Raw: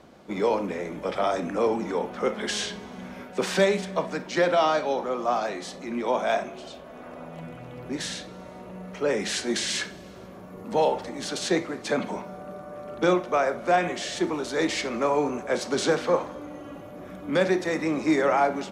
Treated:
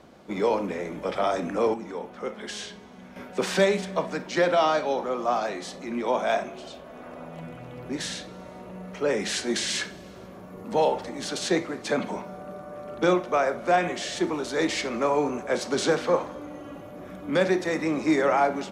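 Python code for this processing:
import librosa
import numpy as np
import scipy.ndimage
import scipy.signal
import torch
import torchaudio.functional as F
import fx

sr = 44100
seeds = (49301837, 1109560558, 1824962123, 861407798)

y = fx.edit(x, sr, fx.clip_gain(start_s=1.74, length_s=1.42, db=-7.0), tone=tone)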